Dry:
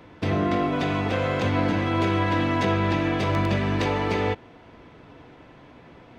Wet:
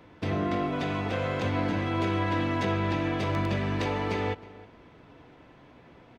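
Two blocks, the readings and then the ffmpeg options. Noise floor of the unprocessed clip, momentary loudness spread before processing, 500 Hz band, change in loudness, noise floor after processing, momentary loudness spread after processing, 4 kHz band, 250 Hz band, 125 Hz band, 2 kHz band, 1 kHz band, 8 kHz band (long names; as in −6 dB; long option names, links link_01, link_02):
−49 dBFS, 2 LU, −5.0 dB, −5.0 dB, −54 dBFS, 3 LU, −5.0 dB, −5.0 dB, −4.5 dB, −5.0 dB, −5.0 dB, can't be measured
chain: -filter_complex "[0:a]asplit=2[link_01][link_02];[link_02]adelay=314.9,volume=-19dB,highshelf=frequency=4000:gain=-7.08[link_03];[link_01][link_03]amix=inputs=2:normalize=0,volume=-5dB"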